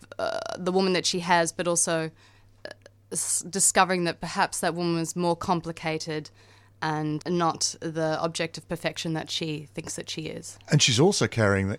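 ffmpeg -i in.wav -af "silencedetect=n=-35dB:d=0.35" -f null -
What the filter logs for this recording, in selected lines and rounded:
silence_start: 2.09
silence_end: 2.65 | silence_duration: 0.57
silence_start: 6.27
silence_end: 6.82 | silence_duration: 0.56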